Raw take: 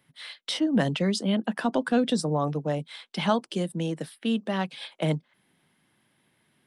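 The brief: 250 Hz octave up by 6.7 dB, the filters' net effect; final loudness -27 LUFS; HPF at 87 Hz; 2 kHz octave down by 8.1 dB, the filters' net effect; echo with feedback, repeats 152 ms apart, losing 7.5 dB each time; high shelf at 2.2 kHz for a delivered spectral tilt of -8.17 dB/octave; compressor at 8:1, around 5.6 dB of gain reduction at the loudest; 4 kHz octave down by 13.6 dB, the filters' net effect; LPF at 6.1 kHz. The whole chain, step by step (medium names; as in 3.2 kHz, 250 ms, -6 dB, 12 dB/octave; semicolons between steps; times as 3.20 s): high-pass 87 Hz; low-pass 6.1 kHz; peaking EQ 250 Hz +8.5 dB; peaking EQ 2 kHz -4.5 dB; treble shelf 2.2 kHz -8.5 dB; peaking EQ 4 kHz -8 dB; compression 8:1, threshold -18 dBFS; feedback delay 152 ms, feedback 42%, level -7.5 dB; trim -2 dB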